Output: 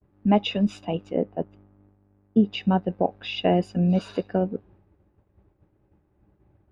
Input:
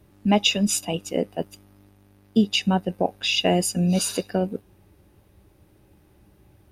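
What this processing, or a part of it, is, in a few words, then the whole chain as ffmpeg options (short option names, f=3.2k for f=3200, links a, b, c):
hearing-loss simulation: -filter_complex "[0:a]adynamicequalizer=threshold=0.0158:dfrequency=3900:dqfactor=1.4:tfrequency=3900:tqfactor=1.4:attack=5:release=100:ratio=0.375:range=3:mode=boostabove:tftype=bell,asettb=1/sr,asplit=3[a][b][c];[a]atrim=end=1.144[d];[b]atrim=start=1.14:end=2.44,asetpts=PTS-STARTPTS,afade=t=in:d=0.004:c=qsin,afade=t=out:st=1.296:d=0.004:c=qsin,lowpass=f=1.6k:p=1[e];[c]atrim=start=2.436[f];[d][e]acrossfade=d=0.004:c1=hsin:c2=qsin[g];[g][f]acrossfade=d=0.004:c1=qsin:c2=hsin,lowpass=1.5k,agate=range=-33dB:threshold=-49dB:ratio=3:detection=peak"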